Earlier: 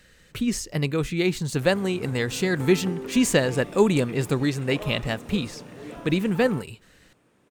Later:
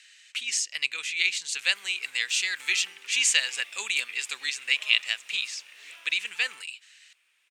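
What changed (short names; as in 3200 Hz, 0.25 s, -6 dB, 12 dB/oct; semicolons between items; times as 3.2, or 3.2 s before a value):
speech: add synth low-pass 7500 Hz, resonance Q 1.8; master: add resonant high-pass 2500 Hz, resonance Q 2.4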